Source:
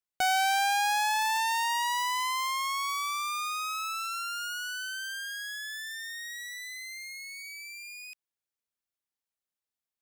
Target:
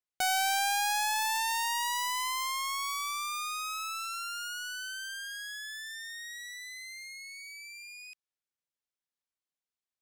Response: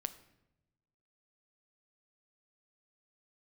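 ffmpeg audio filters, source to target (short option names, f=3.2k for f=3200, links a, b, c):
-af "adynamicsmooth=sensitivity=3.5:basefreq=5.6k,aemphasis=mode=production:type=50kf,volume=-4dB"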